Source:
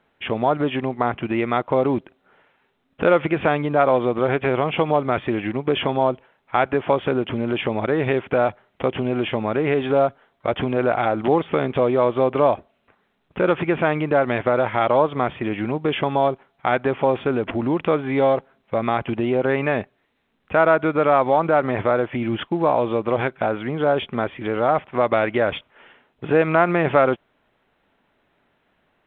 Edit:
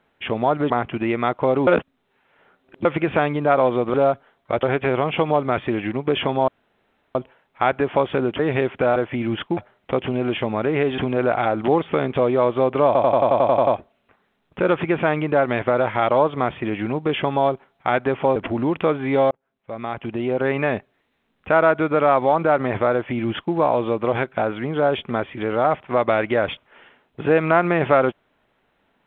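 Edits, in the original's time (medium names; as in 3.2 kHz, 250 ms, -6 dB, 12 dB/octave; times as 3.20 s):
0.70–0.99 s: delete
1.96–3.14 s: reverse
6.08 s: insert room tone 0.67 s
7.32–7.91 s: delete
9.89–10.58 s: move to 4.23 s
12.46 s: stutter 0.09 s, 10 plays
17.15–17.40 s: delete
18.35–19.62 s: fade in
21.97–22.58 s: copy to 8.48 s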